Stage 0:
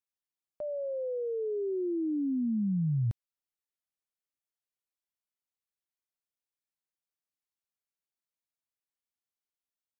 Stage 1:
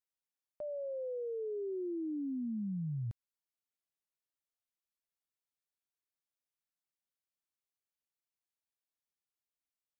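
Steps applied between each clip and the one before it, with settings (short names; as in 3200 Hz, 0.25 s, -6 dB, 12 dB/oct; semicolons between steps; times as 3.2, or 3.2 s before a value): compressor, threshold -31 dBFS, peak gain reduction 4.5 dB; gain -4.5 dB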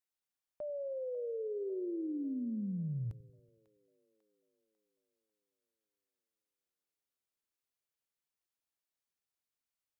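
split-band echo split 480 Hz, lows 94 ms, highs 0.546 s, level -16 dB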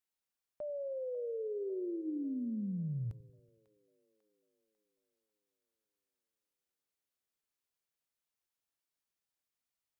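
de-hum 325.8 Hz, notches 3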